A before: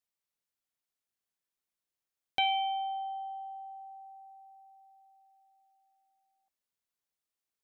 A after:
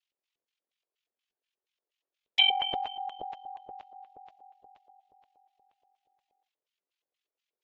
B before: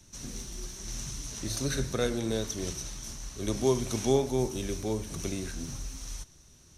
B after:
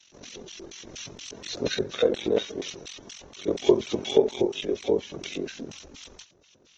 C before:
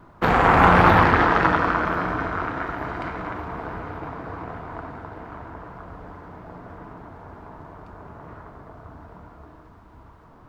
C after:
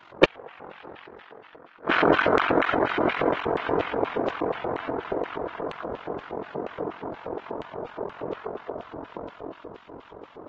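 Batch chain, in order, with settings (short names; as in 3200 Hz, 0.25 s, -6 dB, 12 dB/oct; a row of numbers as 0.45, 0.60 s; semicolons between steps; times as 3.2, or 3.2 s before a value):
flipped gate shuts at -11 dBFS, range -35 dB; LFO band-pass square 4.2 Hz 460–3000 Hz; ring modulator 22 Hz; AAC 24 kbps 48000 Hz; match loudness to -27 LUFS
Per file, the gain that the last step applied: +13.0, +14.0, +19.0 dB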